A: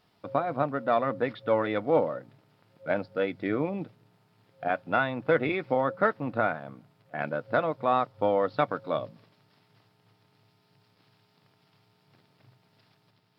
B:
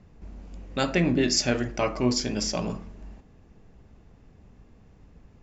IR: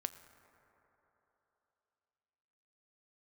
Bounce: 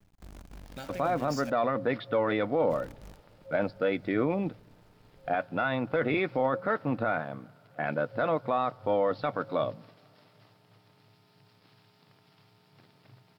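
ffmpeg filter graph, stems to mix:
-filter_complex "[0:a]adelay=650,volume=1.33,asplit=2[s0][s1];[s1]volume=0.106[s2];[1:a]aecho=1:1:1.3:0.51,acompressor=threshold=0.0355:ratio=6,acrusher=bits=7:dc=4:mix=0:aa=0.000001,volume=0.237,asplit=3[s3][s4][s5];[s3]atrim=end=1.5,asetpts=PTS-STARTPTS,afade=t=out:st=1.496:d=0.004:c=hsin[s6];[s4]atrim=start=1.5:end=2.7,asetpts=PTS-STARTPTS,volume=0[s7];[s5]atrim=start=2.7,asetpts=PTS-STARTPTS,afade=t=in:d=0.004:c=hsin[s8];[s6][s7][s8]concat=n=3:v=0:a=1,asplit=2[s9][s10];[s10]volume=0.355[s11];[2:a]atrim=start_sample=2205[s12];[s2][s11]amix=inputs=2:normalize=0[s13];[s13][s12]afir=irnorm=-1:irlink=0[s14];[s0][s9][s14]amix=inputs=3:normalize=0,alimiter=limit=0.133:level=0:latency=1:release=11"

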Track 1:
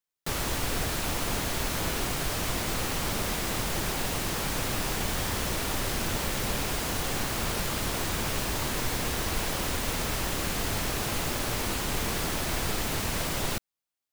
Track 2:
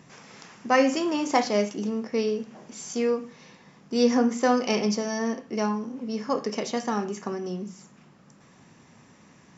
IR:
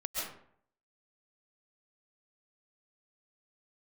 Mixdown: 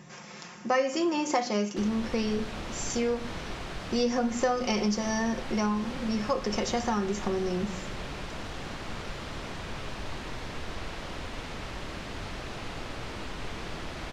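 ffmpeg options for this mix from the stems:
-filter_complex "[0:a]lowpass=4200,adelay=1500,volume=0.335,asplit=2[s0][s1];[s1]volume=0.376[s2];[1:a]aecho=1:1:5.6:0.57,bandreject=f=61.68:t=h:w=4,bandreject=f=123.36:t=h:w=4,bandreject=f=185.04:t=h:w=4,bandreject=f=246.72:t=h:w=4,bandreject=f=308.4:t=h:w=4,bandreject=f=370.08:t=h:w=4,bandreject=f=431.76:t=h:w=4,volume=1.19[s3];[2:a]atrim=start_sample=2205[s4];[s2][s4]afir=irnorm=-1:irlink=0[s5];[s0][s3][s5]amix=inputs=3:normalize=0,acompressor=threshold=0.0562:ratio=3"

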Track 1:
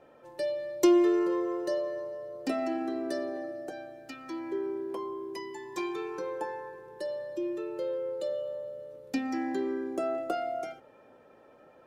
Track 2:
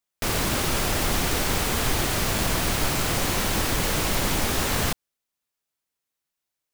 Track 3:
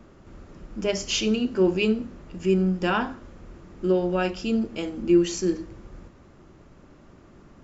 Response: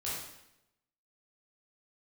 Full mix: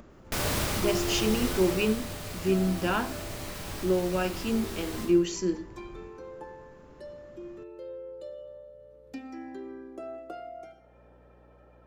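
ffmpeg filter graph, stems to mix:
-filter_complex "[0:a]highshelf=f=4200:g=-6,aeval=exprs='val(0)+0.00126*(sin(2*PI*60*n/s)+sin(2*PI*2*60*n/s)/2+sin(2*PI*3*60*n/s)/3+sin(2*PI*4*60*n/s)/4+sin(2*PI*5*60*n/s)/5)':c=same,volume=0.316,asplit=2[s0][s1];[s1]volume=0.211[s2];[1:a]adelay=100,volume=0.841,afade=t=out:st=1.45:d=0.57:silence=0.446684,asplit=2[s3][s4];[s4]volume=0.299[s5];[2:a]volume=0.631,asplit=2[s6][s7];[s7]apad=whole_len=301341[s8];[s3][s8]sidechaincompress=threshold=0.00355:ratio=8:attack=16:release=1420[s9];[3:a]atrim=start_sample=2205[s10];[s2][s5]amix=inputs=2:normalize=0[s11];[s11][s10]afir=irnorm=-1:irlink=0[s12];[s0][s9][s6][s12]amix=inputs=4:normalize=0,acompressor=mode=upward:threshold=0.00447:ratio=2.5"

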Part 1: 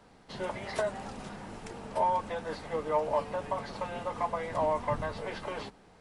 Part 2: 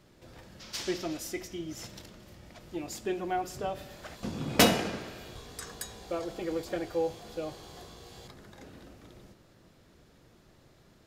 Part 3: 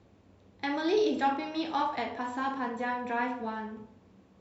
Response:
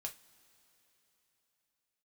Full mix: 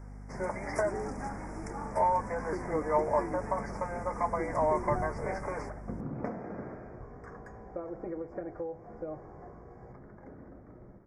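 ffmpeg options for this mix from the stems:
-filter_complex "[0:a]aeval=exprs='val(0)+0.00562*(sin(2*PI*50*n/s)+sin(2*PI*2*50*n/s)/2+sin(2*PI*3*50*n/s)/3+sin(2*PI*4*50*n/s)/4+sin(2*PI*5*50*n/s)/5)':c=same,volume=1.12[s0];[1:a]lowpass=1200,acompressor=threshold=0.0178:ratio=10,adelay=1650,volume=0.891,asplit=2[s1][s2];[s2]volume=0.501[s3];[2:a]volume=0.224[s4];[3:a]atrim=start_sample=2205[s5];[s3][s5]afir=irnorm=-1:irlink=0[s6];[s0][s1][s4][s6]amix=inputs=4:normalize=0,asuperstop=centerf=3400:order=12:qfactor=1.2"

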